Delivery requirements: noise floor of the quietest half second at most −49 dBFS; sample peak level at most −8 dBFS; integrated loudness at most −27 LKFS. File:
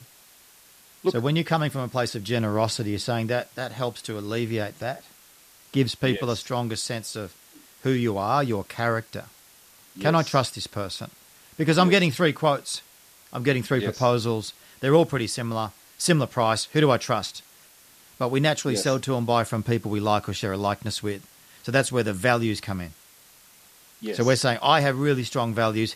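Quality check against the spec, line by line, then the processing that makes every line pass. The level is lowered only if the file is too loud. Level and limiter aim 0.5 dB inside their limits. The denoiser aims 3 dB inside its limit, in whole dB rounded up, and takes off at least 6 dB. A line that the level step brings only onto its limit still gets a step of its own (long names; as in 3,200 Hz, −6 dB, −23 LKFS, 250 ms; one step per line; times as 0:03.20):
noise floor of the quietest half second −53 dBFS: in spec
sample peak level −4.0 dBFS: out of spec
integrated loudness −24.5 LKFS: out of spec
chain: level −3 dB
brickwall limiter −8.5 dBFS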